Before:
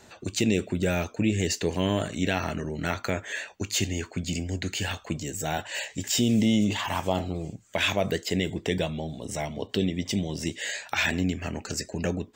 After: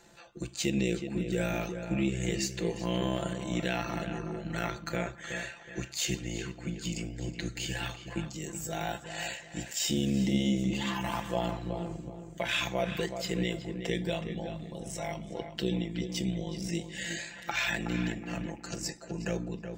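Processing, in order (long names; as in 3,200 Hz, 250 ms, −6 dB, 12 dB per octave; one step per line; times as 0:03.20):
time stretch by overlap-add 1.6×, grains 31 ms
on a send: feedback echo with a low-pass in the loop 371 ms, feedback 31%, low-pass 2,100 Hz, level −7.5 dB
on the sum: level −4.5 dB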